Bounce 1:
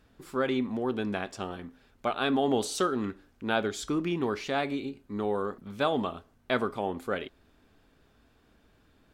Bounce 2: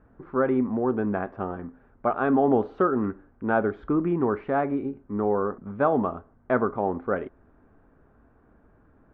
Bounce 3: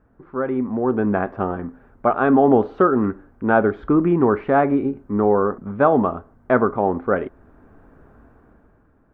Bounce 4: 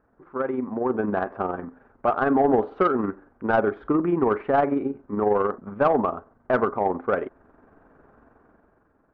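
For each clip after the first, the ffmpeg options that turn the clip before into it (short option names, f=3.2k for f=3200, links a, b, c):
-af "lowpass=f=1.5k:w=0.5412,lowpass=f=1.5k:w=1.3066,volume=5.5dB"
-af "dynaudnorm=f=170:g=11:m=14.5dB,volume=-1.5dB"
-filter_complex "[0:a]tremolo=f=22:d=0.462,asplit=2[a][b];[b]highpass=f=720:p=1,volume=14dB,asoftclip=type=tanh:threshold=-2.5dB[c];[a][c]amix=inputs=2:normalize=0,lowpass=f=1.2k:p=1,volume=-6dB,volume=-4.5dB"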